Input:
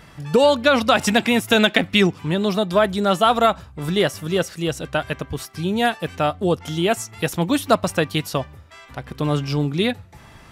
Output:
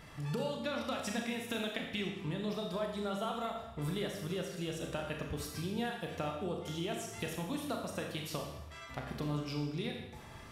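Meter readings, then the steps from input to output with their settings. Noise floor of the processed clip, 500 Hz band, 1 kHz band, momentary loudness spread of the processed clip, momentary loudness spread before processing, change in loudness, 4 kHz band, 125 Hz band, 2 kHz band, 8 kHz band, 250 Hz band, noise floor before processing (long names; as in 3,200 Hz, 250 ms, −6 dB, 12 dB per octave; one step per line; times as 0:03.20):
−50 dBFS, −19.0 dB, −20.0 dB, 4 LU, 11 LU, −18.5 dB, −18.5 dB, −14.5 dB, −19.5 dB, −15.0 dB, −16.5 dB, −46 dBFS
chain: notch filter 1,500 Hz, Q 26
downward compressor 10 to 1, threshold −28 dBFS, peak gain reduction 18.5 dB
four-comb reverb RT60 0.9 s, combs from 27 ms, DRR 1 dB
level −8 dB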